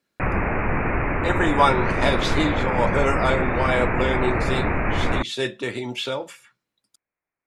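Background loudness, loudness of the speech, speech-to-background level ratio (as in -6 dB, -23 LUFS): -24.0 LUFS, -24.5 LUFS, -0.5 dB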